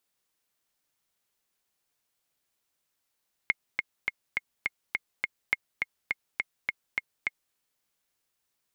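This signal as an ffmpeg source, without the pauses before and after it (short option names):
-f lavfi -i "aevalsrc='pow(10,(-10-4*gte(mod(t,7*60/207),60/207))/20)*sin(2*PI*2150*mod(t,60/207))*exp(-6.91*mod(t,60/207)/0.03)':d=4.05:s=44100"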